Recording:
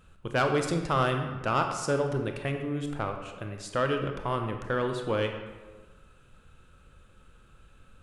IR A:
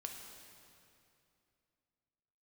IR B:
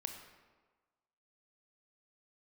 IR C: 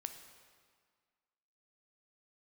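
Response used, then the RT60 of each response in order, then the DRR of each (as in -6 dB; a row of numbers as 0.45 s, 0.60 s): B; 2.7 s, 1.4 s, 1.8 s; 1.5 dB, 4.5 dB, 7.0 dB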